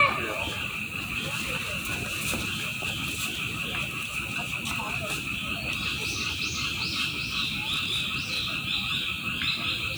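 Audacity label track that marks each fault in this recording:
7.430000	8.650000	clipped -23.5 dBFS

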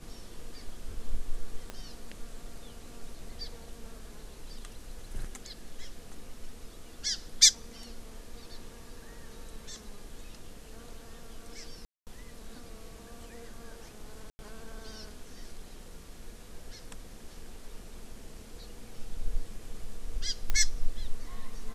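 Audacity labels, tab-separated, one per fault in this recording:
1.700000	1.700000	pop -23 dBFS
11.850000	12.070000	gap 0.218 s
14.300000	14.390000	gap 90 ms
20.500000	20.500000	pop -14 dBFS

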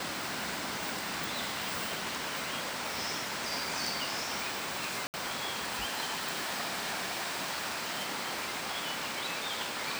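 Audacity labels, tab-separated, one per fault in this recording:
5.070000	5.140000	gap 69 ms

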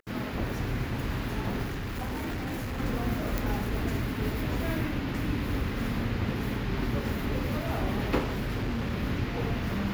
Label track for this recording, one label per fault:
1.640000	2.790000	clipped -30 dBFS
3.380000	3.380000	pop
8.180000	8.930000	clipped -26.5 dBFS

